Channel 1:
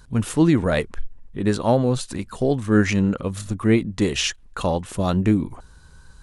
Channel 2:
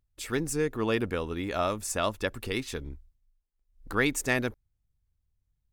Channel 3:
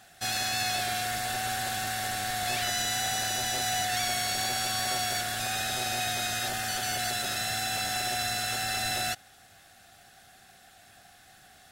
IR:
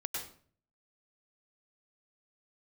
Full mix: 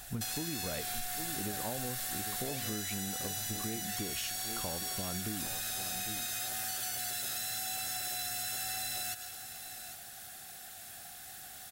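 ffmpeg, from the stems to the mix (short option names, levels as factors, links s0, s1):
-filter_complex "[0:a]volume=0.398,asplit=2[s0][s1];[s1]volume=0.158[s2];[2:a]acompressor=threshold=0.0178:ratio=6,aemphasis=mode=production:type=50fm,volume=0.841,asplit=3[s3][s4][s5];[s4]volume=0.398[s6];[s5]volume=0.178[s7];[s0]acompressor=threshold=0.0398:ratio=6,volume=1[s8];[3:a]atrim=start_sample=2205[s9];[s6][s9]afir=irnorm=-1:irlink=0[s10];[s2][s7]amix=inputs=2:normalize=0,aecho=0:1:801:1[s11];[s3][s8][s10][s11]amix=inputs=4:normalize=0,acompressor=threshold=0.02:ratio=6"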